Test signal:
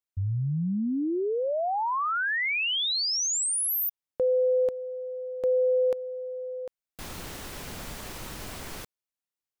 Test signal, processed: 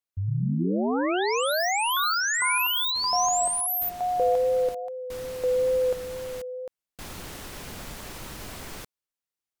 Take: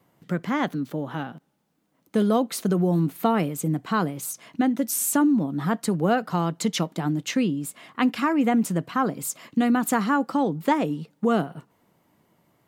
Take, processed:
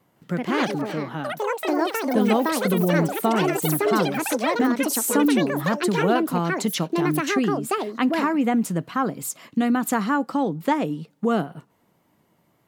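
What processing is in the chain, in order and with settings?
ever faster or slower copies 161 ms, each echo +6 st, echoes 3; wow and flutter 17 cents

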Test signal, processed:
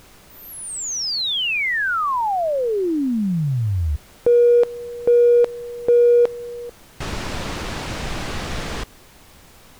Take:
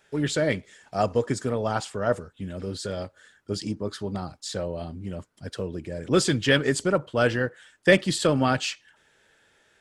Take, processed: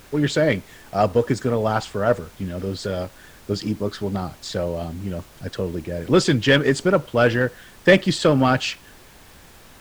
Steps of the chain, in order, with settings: distance through air 79 m; added noise pink -53 dBFS; in parallel at -4 dB: hard clipper -16.5 dBFS; on the sum: trim +1.5 dB

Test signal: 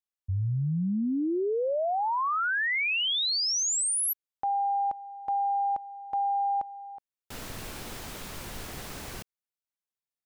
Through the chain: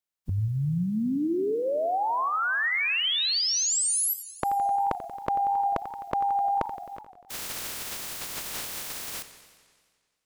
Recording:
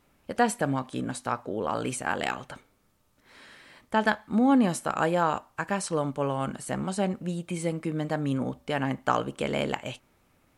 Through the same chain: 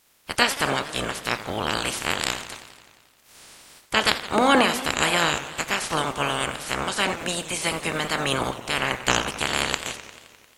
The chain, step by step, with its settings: spectral peaks clipped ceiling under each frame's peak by 29 dB; modulated delay 88 ms, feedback 71%, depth 210 cents, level -14 dB; trim +3.5 dB

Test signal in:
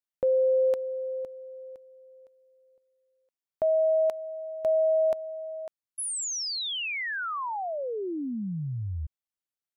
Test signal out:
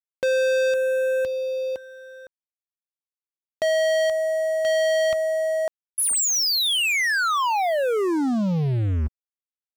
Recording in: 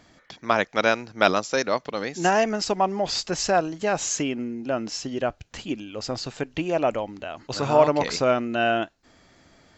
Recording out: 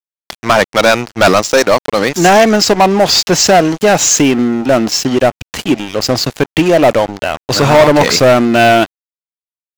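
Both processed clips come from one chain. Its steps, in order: high-pass 58 Hz 24 dB/octave; waveshaping leveller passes 5; crossover distortion -39.5 dBFS

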